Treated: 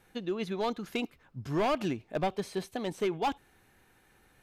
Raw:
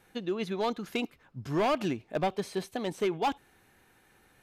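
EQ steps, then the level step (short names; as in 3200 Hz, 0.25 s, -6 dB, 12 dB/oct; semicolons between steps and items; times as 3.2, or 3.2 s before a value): low shelf 72 Hz +6.5 dB; -1.5 dB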